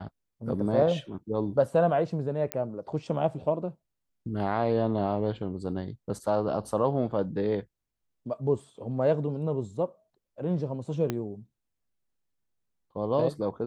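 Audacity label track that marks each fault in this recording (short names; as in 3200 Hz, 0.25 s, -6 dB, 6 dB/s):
2.520000	2.520000	pop -13 dBFS
11.100000	11.100000	pop -15 dBFS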